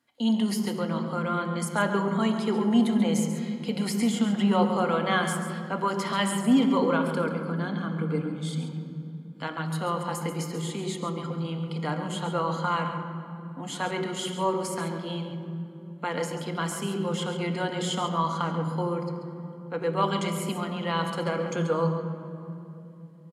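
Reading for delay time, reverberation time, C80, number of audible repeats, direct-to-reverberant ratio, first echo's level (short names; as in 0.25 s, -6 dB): 0.137 s, 2.9 s, 6.5 dB, 1, 3.5 dB, -10.0 dB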